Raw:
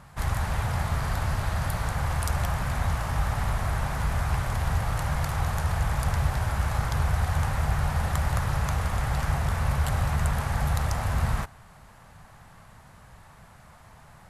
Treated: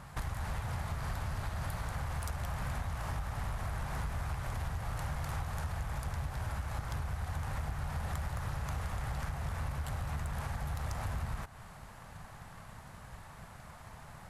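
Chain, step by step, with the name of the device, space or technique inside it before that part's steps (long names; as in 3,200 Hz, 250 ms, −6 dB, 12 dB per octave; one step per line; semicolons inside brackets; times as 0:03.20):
drum-bus smash (transient designer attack +5 dB, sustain +1 dB; downward compressor 12 to 1, threshold −31 dBFS, peak gain reduction 15.5 dB; soft clipping −28 dBFS, distortion −18 dB)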